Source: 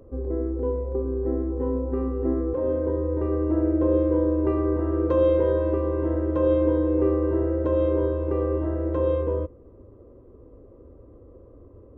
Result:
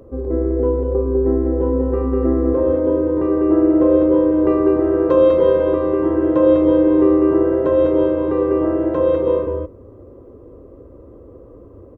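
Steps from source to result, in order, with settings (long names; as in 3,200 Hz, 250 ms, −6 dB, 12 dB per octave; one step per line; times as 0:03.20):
low-shelf EQ 71 Hz −8 dB
on a send: single-tap delay 199 ms −3.5 dB
on the sum: level +7.5 dB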